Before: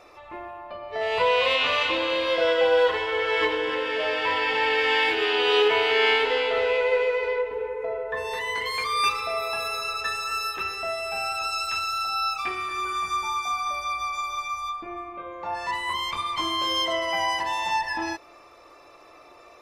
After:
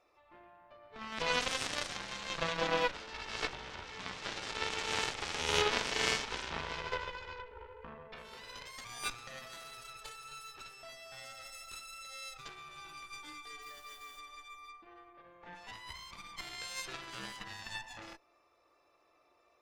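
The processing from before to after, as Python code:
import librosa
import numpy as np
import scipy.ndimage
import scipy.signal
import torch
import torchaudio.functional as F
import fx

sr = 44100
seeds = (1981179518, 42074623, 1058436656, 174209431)

y = fx.dmg_noise_colour(x, sr, seeds[0], colour='white', level_db=-45.0, at=(13.61, 14.18), fade=0.02)
y = fx.cheby_harmonics(y, sr, harmonics=(3, 4, 7, 8), levels_db=(-10, -22, -32, -42), full_scale_db=-8.0)
y = F.gain(torch.from_numpy(y), -2.0).numpy()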